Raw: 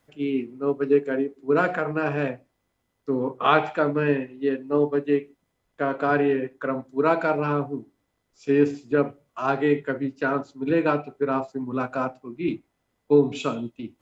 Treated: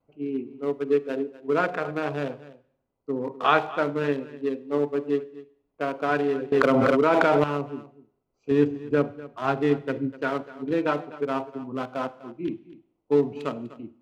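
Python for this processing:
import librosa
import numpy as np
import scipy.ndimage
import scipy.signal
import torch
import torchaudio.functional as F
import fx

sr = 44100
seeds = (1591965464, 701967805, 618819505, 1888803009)

y = fx.wiener(x, sr, points=25)
y = fx.low_shelf(y, sr, hz=180.0, db=10.5, at=(8.51, 10.13))
y = fx.vibrato(y, sr, rate_hz=0.37, depth_cents=13.0)
y = fx.low_shelf(y, sr, hz=380.0, db=-6.0)
y = y + 10.0 ** (-17.5 / 20.0) * np.pad(y, (int(248 * sr / 1000.0), 0))[:len(y)]
y = fx.rev_schroeder(y, sr, rt60_s=0.73, comb_ms=33, drr_db=18.0)
y = fx.env_flatten(y, sr, amount_pct=100, at=(6.52, 7.44))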